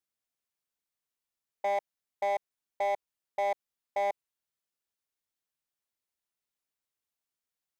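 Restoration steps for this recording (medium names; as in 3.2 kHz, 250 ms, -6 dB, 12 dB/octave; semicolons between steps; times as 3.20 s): clip repair -25.5 dBFS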